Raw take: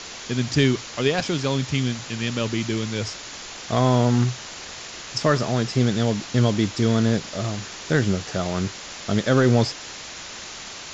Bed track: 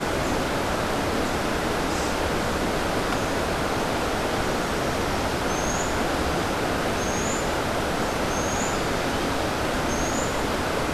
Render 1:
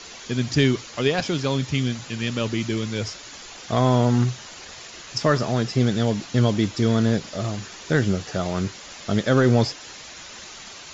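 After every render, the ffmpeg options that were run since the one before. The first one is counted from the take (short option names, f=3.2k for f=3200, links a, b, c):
-af "afftdn=nr=7:nf=-38"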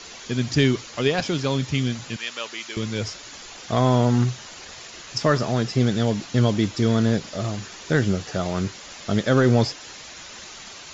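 -filter_complex "[0:a]asettb=1/sr,asplit=3[a][b][c];[a]atrim=end=2.164[d];[b]atrim=start=2.16:end=2.77,asetpts=PTS-STARTPTS,afade=t=in:d=0.004:c=qsin,afade=t=out:st=0.606:d=0.004:c=qsin,highpass=810[e];[c]atrim=start=2.766[f];[d][e]acrossfade=d=0.004:c1=hsin:c2=qsin[g];[g][f]acrossfade=d=0.004:c1=qsin:c2=hsin"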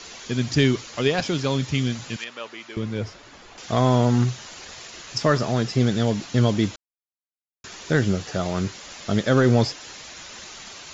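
-filter_complex "[0:a]asettb=1/sr,asplit=3[a][b][c];[a]atrim=end=2.244[d];[b]atrim=start=2.24:end=3.58,asetpts=PTS-STARTPTS,afade=t=in:d=0.004:c=qsin,afade=t=out:st=1.336:d=0.004:c=qsin,lowpass=f=1.4k:p=1[e];[c]atrim=start=3.576[f];[d][e]acrossfade=d=0.004:c1=hsin:c2=qsin[g];[g][f]acrossfade=d=0.004:c1=qsin:c2=hsin,asplit=3[h][i][j];[h]atrim=end=6.76,asetpts=PTS-STARTPTS,afade=t=out:st=6.756:d=0.004:c=hsin[k];[i]atrim=start=6.76:end=7.64,asetpts=PTS-STARTPTS,volume=0[l];[j]atrim=start=7.64,asetpts=PTS-STARTPTS,afade=t=in:d=0.004:c=hsin[m];[k][l][m]concat=n=3:v=0:a=1"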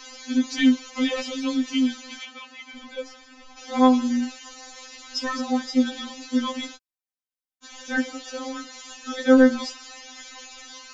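-af "afftfilt=real='re*3.46*eq(mod(b,12),0)':imag='im*3.46*eq(mod(b,12),0)':win_size=2048:overlap=0.75"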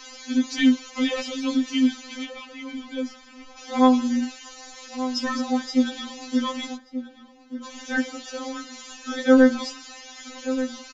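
-filter_complex "[0:a]asplit=2[a][b];[b]adelay=1182,lowpass=f=1.2k:p=1,volume=-11dB,asplit=2[c][d];[d]adelay=1182,lowpass=f=1.2k:p=1,volume=0.23,asplit=2[e][f];[f]adelay=1182,lowpass=f=1.2k:p=1,volume=0.23[g];[a][c][e][g]amix=inputs=4:normalize=0"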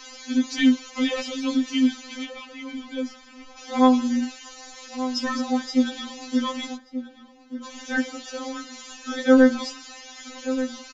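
-af anull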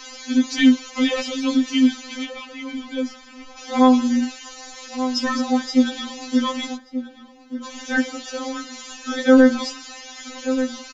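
-af "volume=4dB,alimiter=limit=-3dB:level=0:latency=1"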